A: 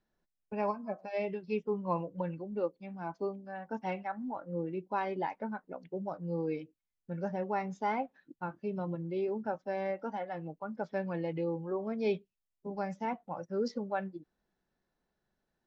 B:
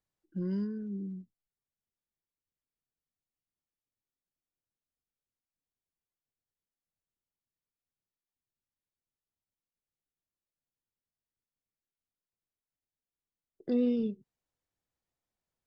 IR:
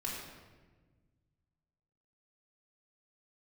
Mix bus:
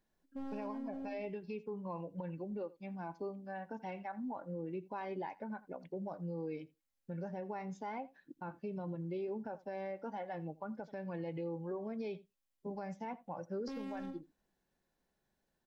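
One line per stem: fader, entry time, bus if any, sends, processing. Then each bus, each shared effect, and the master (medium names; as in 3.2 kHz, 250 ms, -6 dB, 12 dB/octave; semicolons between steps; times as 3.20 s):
-0.5 dB, 0.00 s, no send, echo send -21.5 dB, band-stop 1.3 kHz, Q 8.6; compression, threshold -36 dBFS, peak gain reduction 10 dB
+1.5 dB, 0.00 s, no send, echo send -13.5 dB, hard clipper -37 dBFS, distortion -4 dB; robot voice 271 Hz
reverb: none
echo: delay 83 ms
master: peak limiter -33 dBFS, peak gain reduction 7 dB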